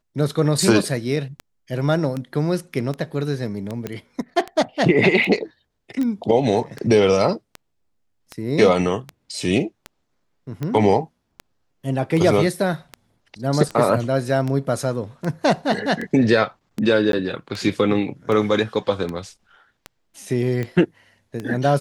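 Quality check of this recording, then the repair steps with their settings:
tick 78 rpm
3.87 s: pop -14 dBFS
6.03 s: pop -16 dBFS
17.12–17.13 s: dropout 12 ms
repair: de-click; interpolate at 17.12 s, 12 ms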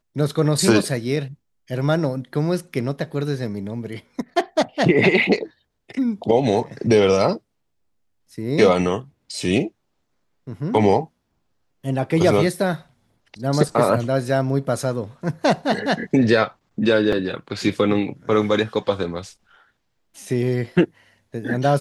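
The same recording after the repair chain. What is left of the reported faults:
nothing left

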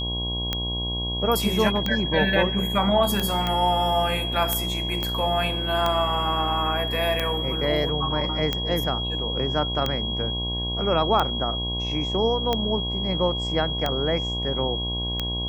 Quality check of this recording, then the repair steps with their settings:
buzz 60 Hz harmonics 18 -30 dBFS
tick 45 rpm -10 dBFS
whine 3.3 kHz -28 dBFS
3.47 s: pop -12 dBFS
5.03 s: pop -13 dBFS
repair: de-click; de-hum 60 Hz, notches 18; band-stop 3.3 kHz, Q 30

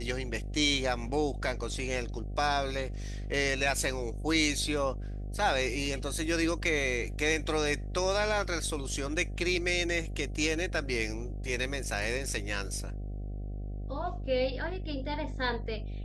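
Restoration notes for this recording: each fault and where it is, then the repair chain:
buzz 50 Hz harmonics 15 -37 dBFS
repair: de-hum 50 Hz, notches 15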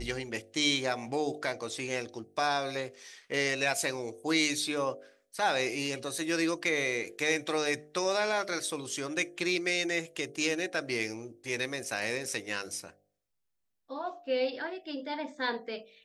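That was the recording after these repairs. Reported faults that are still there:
nothing left

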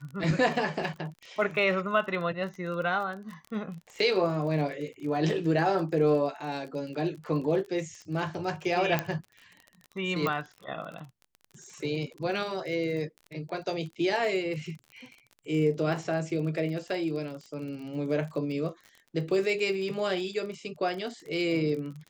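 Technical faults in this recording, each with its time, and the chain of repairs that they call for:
crackle 31 per s -37 dBFS
8.99 s: pop -12 dBFS
10.27 s: pop -16 dBFS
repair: de-click

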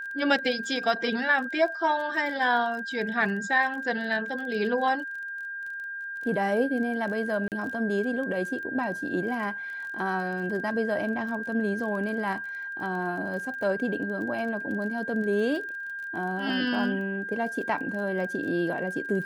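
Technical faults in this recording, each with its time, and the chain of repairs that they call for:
crackle 23 per s -36 dBFS
whine 1.6 kHz -33 dBFS
7.48–7.52 s: dropout 38 ms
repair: de-click; band-stop 1.6 kHz, Q 30; interpolate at 7.48 s, 38 ms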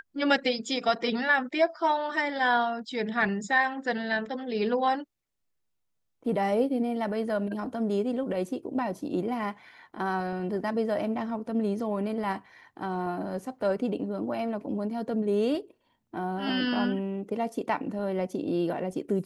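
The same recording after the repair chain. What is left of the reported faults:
nothing left

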